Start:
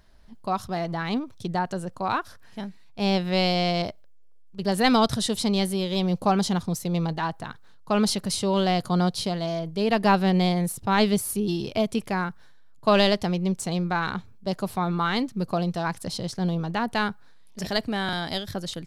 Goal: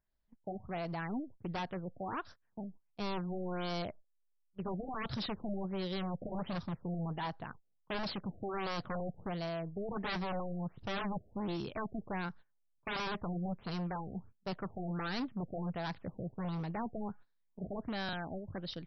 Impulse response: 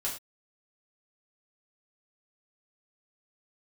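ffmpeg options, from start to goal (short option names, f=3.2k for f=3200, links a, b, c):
-af "aeval=exprs='0.0708*(abs(mod(val(0)/0.0708+3,4)-2)-1)':c=same,agate=range=-20dB:threshold=-41dB:ratio=16:detection=peak,afftfilt=real='re*lt(b*sr/1024,730*pow(6000/730,0.5+0.5*sin(2*PI*1.4*pts/sr)))':imag='im*lt(b*sr/1024,730*pow(6000/730,0.5+0.5*sin(2*PI*1.4*pts/sr)))':win_size=1024:overlap=0.75,volume=-8.5dB"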